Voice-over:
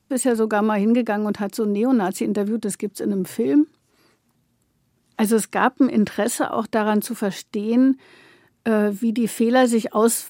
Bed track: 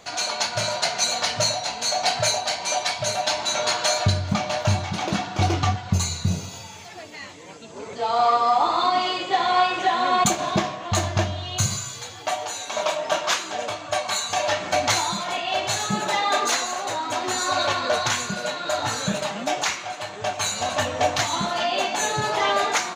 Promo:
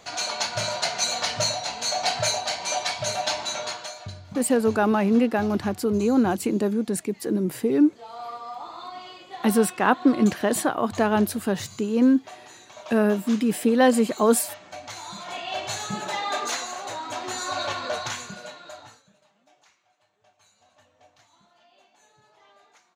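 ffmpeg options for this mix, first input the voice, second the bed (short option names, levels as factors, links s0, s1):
-filter_complex "[0:a]adelay=4250,volume=0.841[s0];[1:a]volume=2.82,afade=t=out:st=3.29:d=0.64:silence=0.177828,afade=t=in:st=14.95:d=0.47:silence=0.266073,afade=t=out:st=17.85:d=1.18:silence=0.0316228[s1];[s0][s1]amix=inputs=2:normalize=0"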